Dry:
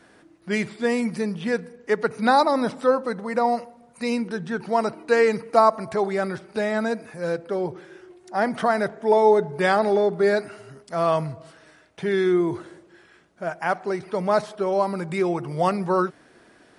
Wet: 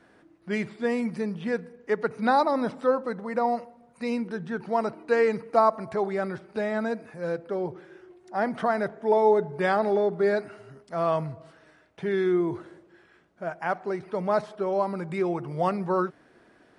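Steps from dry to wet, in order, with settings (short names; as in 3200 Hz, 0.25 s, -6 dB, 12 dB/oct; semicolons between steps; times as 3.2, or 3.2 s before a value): high shelf 4000 Hz -10 dB; gain -3.5 dB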